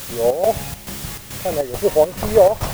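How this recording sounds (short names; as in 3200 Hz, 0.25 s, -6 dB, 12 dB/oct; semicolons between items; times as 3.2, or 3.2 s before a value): a quantiser's noise floor 6-bit, dither triangular; chopped level 2.3 Hz, depth 60%, duty 70%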